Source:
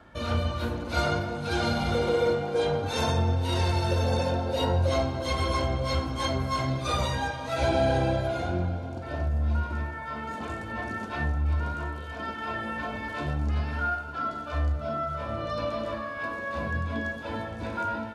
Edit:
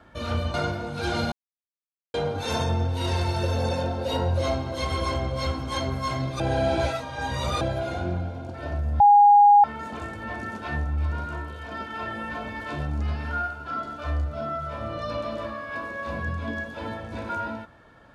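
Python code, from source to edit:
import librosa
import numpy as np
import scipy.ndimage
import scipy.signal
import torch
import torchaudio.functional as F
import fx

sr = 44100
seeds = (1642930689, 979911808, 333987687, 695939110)

y = fx.edit(x, sr, fx.cut(start_s=0.54, length_s=0.48),
    fx.silence(start_s=1.8, length_s=0.82),
    fx.reverse_span(start_s=6.88, length_s=1.21),
    fx.bleep(start_s=9.48, length_s=0.64, hz=820.0, db=-10.5), tone=tone)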